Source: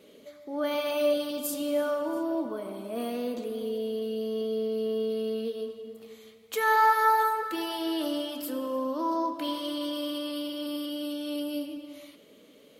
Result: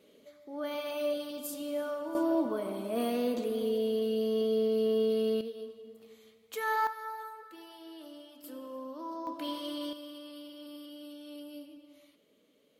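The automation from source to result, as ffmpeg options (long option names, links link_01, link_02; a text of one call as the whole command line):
ffmpeg -i in.wav -af "asetnsamples=nb_out_samples=441:pad=0,asendcmd='2.15 volume volume 1.5dB;5.41 volume volume -7.5dB;6.87 volume volume -18dB;8.44 volume volume -11.5dB;9.27 volume volume -5dB;9.93 volume volume -13dB',volume=-7dB" out.wav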